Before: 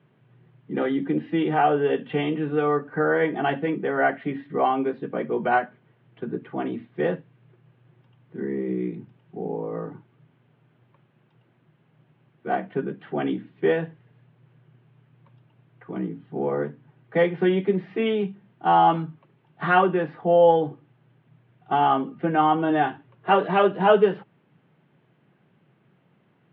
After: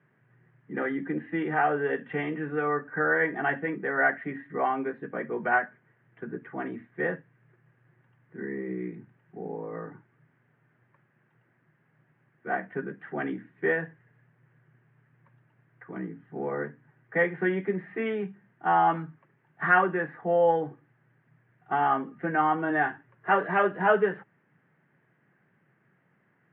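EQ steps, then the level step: resonant low-pass 1.8 kHz, resonance Q 4; -7.0 dB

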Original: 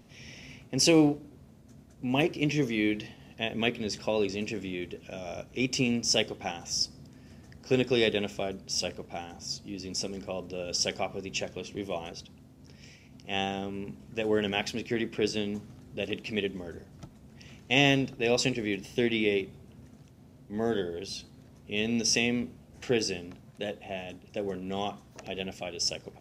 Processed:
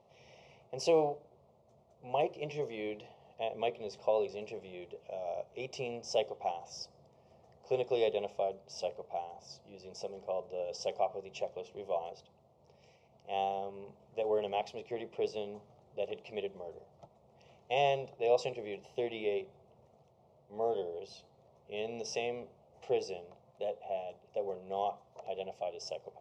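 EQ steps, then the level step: band-pass filter 710 Hz, Q 0.91; static phaser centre 660 Hz, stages 4; +2.0 dB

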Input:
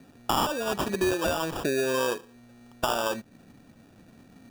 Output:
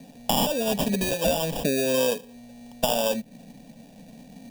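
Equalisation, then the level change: dynamic bell 5.9 kHz, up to -4 dB, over -49 dBFS, Q 0.82; dynamic bell 940 Hz, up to -6 dB, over -40 dBFS, Q 0.88; static phaser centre 350 Hz, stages 6; +9.0 dB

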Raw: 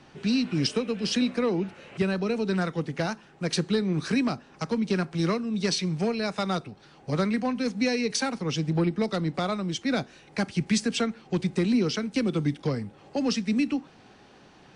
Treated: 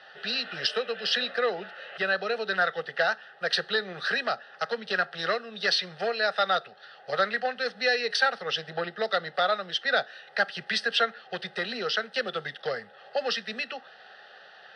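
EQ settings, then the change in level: band-pass 600–4800 Hz; peaking EQ 1.9 kHz +8.5 dB 0.46 oct; static phaser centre 1.5 kHz, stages 8; +7.5 dB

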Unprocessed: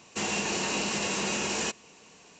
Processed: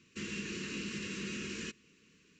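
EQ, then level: Butterworth band-stop 750 Hz, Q 0.61; low-pass 1.9 kHz 6 dB/octave; -5.0 dB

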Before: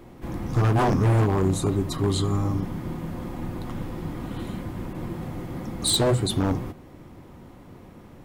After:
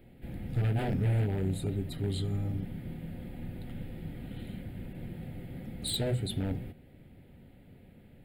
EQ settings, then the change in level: peaking EQ 330 Hz -8 dB 0.35 oct; static phaser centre 2.6 kHz, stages 4; -7.0 dB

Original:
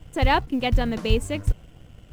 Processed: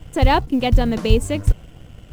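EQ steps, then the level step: dynamic bell 1.9 kHz, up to -6 dB, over -36 dBFS, Q 0.73; +6.0 dB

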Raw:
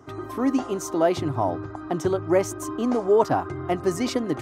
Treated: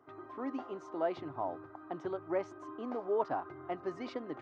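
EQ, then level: high-pass 930 Hz 6 dB/octave; tape spacing loss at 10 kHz 44 dB; dynamic bell 4.5 kHz, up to +4 dB, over -57 dBFS, Q 1.5; -4.5 dB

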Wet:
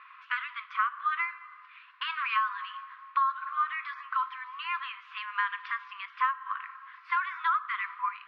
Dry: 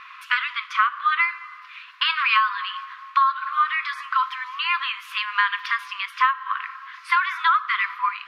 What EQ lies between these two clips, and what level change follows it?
band-pass filter 750 Hz, Q 0.52; distance through air 180 m; tilt EQ +1.5 dB/octave; -6.5 dB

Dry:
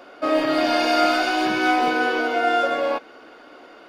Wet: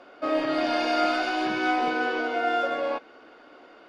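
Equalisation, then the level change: distance through air 63 m; -5.0 dB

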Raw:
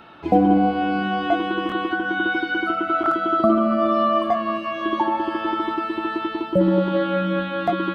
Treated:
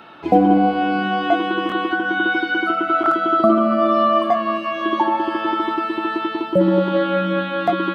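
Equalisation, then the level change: high-pass 180 Hz 6 dB/octave; +3.5 dB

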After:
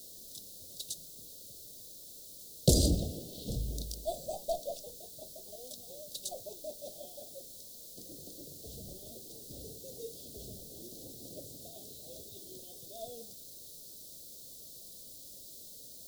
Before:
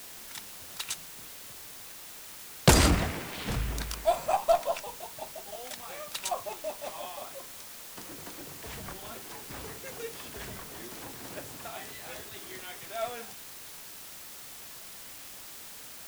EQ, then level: elliptic band-stop 580–3900 Hz, stop band 40 dB; -3.5 dB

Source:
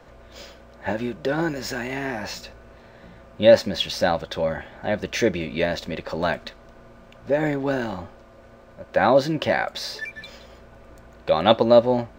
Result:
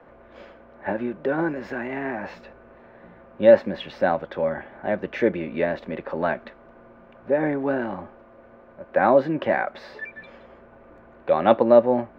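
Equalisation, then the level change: tone controls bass +8 dB, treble -13 dB; three-band isolator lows -18 dB, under 230 Hz, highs -15 dB, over 2.6 kHz; 0.0 dB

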